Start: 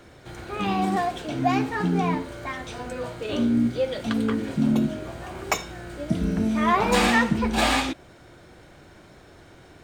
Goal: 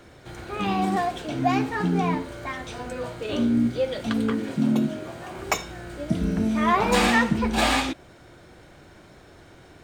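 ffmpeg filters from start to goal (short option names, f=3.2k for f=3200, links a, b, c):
-filter_complex "[0:a]asettb=1/sr,asplit=3[a][b][c];[a]atrim=end=4.314[d];[b]atrim=start=4.31:end=5.38,asetpts=PTS-STARTPTS,afade=t=in:d=0.004:c=qsin,afade=t=out:st=1.066:d=0.004:c=qsin,highpass=120[e];[c]atrim=start=5.376[f];[d][e]acrossfade=d=0.004:c1=hsin:c2=qsin[g];[g][f]acrossfade=d=0.004:c1=qsin:c2=hsin"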